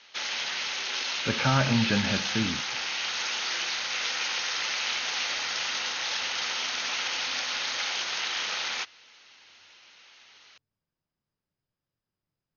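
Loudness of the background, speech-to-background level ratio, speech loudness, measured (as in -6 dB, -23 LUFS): -28.5 LUFS, 1.0 dB, -27.5 LUFS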